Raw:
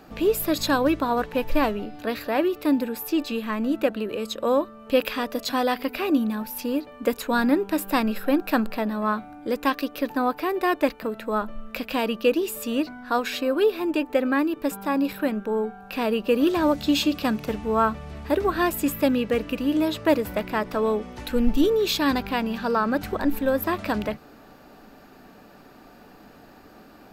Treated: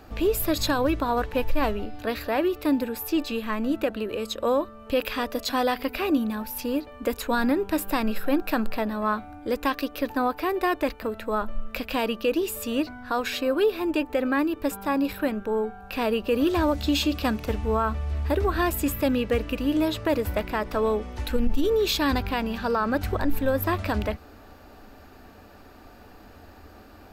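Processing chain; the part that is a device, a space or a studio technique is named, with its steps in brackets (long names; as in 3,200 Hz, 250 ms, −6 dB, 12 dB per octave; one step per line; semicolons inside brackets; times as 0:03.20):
car stereo with a boomy subwoofer (low shelf with overshoot 110 Hz +7.5 dB, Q 3; brickwall limiter −14 dBFS, peak gain reduction 10.5 dB)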